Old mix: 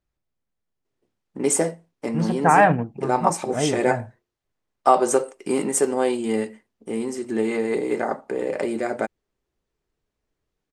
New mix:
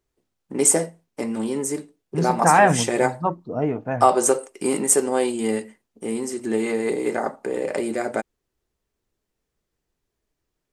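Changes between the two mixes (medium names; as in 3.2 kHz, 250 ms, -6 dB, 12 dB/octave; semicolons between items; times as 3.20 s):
first voice: entry -0.85 s; master: add treble shelf 7.9 kHz +11.5 dB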